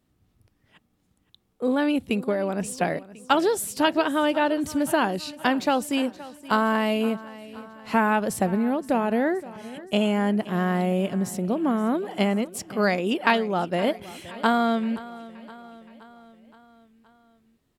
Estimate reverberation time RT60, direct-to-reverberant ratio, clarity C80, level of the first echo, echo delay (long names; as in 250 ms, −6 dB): no reverb audible, no reverb audible, no reverb audible, −18.0 dB, 521 ms